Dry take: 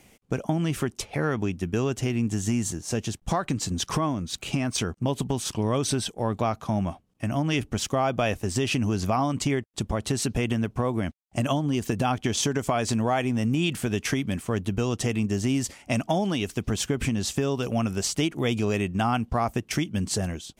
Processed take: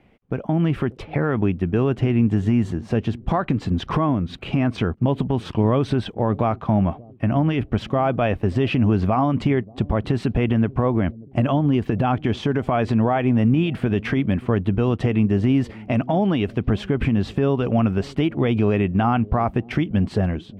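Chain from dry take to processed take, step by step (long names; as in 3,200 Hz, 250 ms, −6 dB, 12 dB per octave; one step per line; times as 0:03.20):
automatic gain control gain up to 7 dB
brickwall limiter −10.5 dBFS, peak gain reduction 6 dB
high-frequency loss of the air 460 metres
on a send: bucket-brigade delay 584 ms, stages 2,048, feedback 42%, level −21 dB
on the sum: level +1.5 dB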